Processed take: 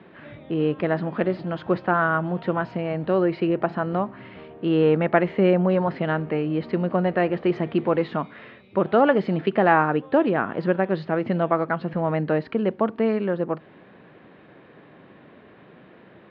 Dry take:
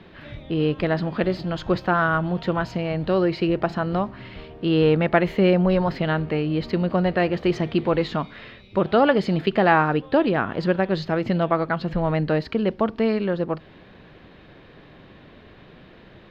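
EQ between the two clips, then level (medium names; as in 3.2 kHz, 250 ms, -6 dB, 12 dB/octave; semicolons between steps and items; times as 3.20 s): band-pass 160–2200 Hz; 0.0 dB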